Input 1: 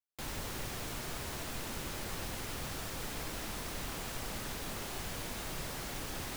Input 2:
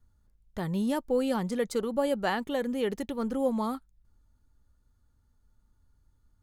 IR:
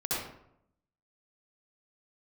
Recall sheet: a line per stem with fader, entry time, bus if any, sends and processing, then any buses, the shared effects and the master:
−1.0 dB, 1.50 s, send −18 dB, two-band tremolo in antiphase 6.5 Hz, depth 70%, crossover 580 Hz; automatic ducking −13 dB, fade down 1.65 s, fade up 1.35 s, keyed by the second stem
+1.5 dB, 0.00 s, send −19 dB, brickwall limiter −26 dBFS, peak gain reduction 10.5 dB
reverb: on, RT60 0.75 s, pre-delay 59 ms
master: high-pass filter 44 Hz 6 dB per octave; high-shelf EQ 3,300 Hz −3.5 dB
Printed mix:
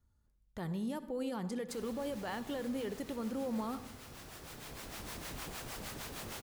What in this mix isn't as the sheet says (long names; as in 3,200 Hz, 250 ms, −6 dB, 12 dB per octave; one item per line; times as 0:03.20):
stem 2 +1.5 dB → −5.5 dB
master: missing high-shelf EQ 3,300 Hz −3.5 dB